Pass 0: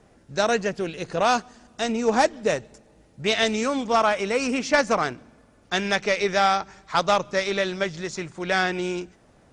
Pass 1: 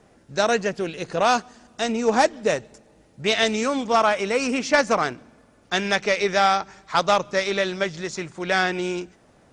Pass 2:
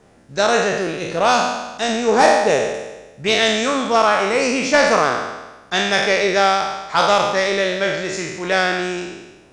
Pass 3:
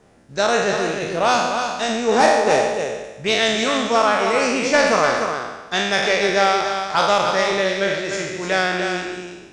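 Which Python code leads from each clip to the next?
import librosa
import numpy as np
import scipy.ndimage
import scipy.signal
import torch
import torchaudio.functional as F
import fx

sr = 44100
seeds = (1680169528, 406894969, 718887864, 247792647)

y1 = fx.low_shelf(x, sr, hz=93.0, db=-6.0)
y1 = F.gain(torch.from_numpy(y1), 1.5).numpy()
y2 = fx.spec_trails(y1, sr, decay_s=1.14)
y2 = F.gain(torch.from_numpy(y2), 1.5).numpy()
y3 = y2 + 10.0 ** (-6.5 / 20.0) * np.pad(y2, (int(299 * sr / 1000.0), 0))[:len(y2)]
y3 = F.gain(torch.from_numpy(y3), -2.0).numpy()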